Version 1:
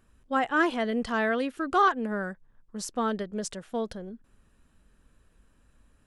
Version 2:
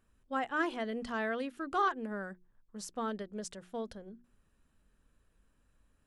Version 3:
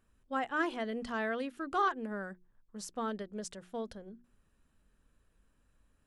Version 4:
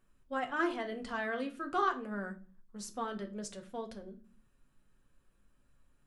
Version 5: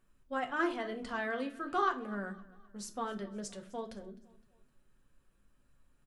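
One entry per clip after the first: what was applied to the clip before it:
hum notches 60/120/180/240/300/360 Hz; trim -8 dB
no audible change
flange 0.36 Hz, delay 4.5 ms, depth 4 ms, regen -85%; reverberation RT60 0.40 s, pre-delay 5 ms, DRR 4.5 dB; trim +3 dB
feedback delay 257 ms, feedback 46%, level -22 dB

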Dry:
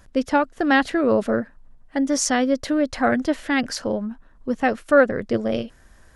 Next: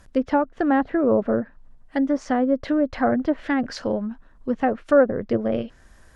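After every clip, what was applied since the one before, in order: low-pass that closes with the level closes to 990 Hz, closed at -16 dBFS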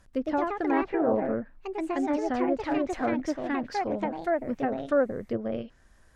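ever faster or slower copies 135 ms, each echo +3 st, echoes 2; trim -8 dB

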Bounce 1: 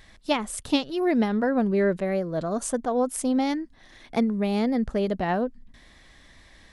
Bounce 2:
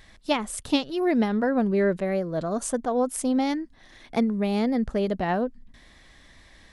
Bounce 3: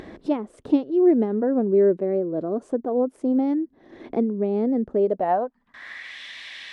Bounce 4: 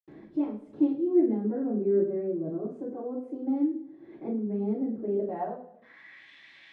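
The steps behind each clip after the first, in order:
no audible change
band-pass sweep 360 Hz -> 2.8 kHz, 4.94–6.20 s; upward compressor, threshold -33 dBFS; trim +8 dB
reverberation, pre-delay 77 ms

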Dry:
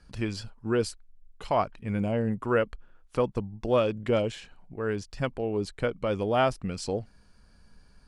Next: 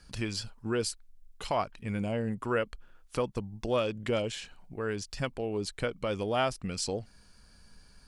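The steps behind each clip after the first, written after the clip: treble shelf 2.5 kHz +9.5 dB; in parallel at +2 dB: compression, threshold -32 dBFS, peak gain reduction 14 dB; on the sum: trim -8 dB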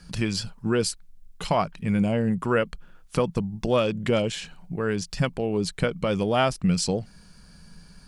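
peaking EQ 170 Hz +14 dB 0.4 oct; trim +6 dB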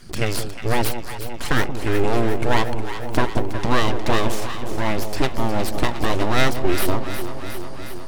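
full-wave rectifier; echo whose repeats swap between lows and highs 180 ms, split 830 Hz, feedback 83%, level -8 dB; trim +6 dB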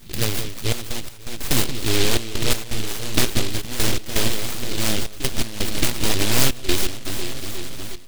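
trance gate "xxxx.x.x" 83 bpm -12 dB; delay time shaken by noise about 3.3 kHz, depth 0.34 ms

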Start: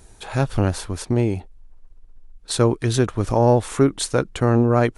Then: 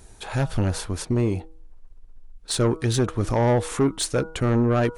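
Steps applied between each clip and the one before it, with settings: de-hum 160.5 Hz, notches 9; saturation -14 dBFS, distortion -11 dB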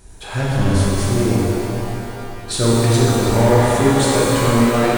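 pitch-shifted reverb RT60 3.1 s, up +12 st, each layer -8 dB, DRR -6.5 dB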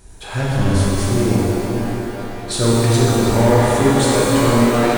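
repeats whose band climbs or falls 493 ms, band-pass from 260 Hz, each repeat 1.4 oct, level -4.5 dB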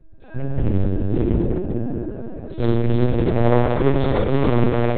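local Wiener filter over 41 samples; LPC vocoder at 8 kHz pitch kept; trim -1.5 dB

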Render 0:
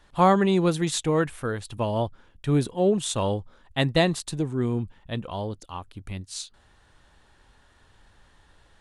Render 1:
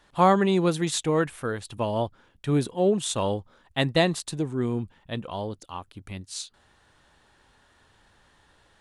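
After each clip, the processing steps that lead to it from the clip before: bass shelf 67 Hz -12 dB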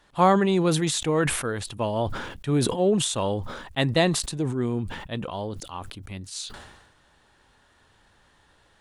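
decay stretcher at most 51 dB/s

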